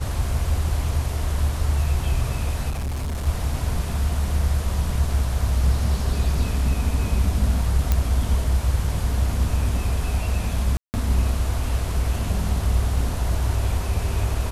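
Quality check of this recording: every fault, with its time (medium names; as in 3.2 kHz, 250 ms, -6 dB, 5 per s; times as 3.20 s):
2.69–3.27 s: clipped -23.5 dBFS
7.92 s: pop -7 dBFS
10.77–10.94 s: dropout 169 ms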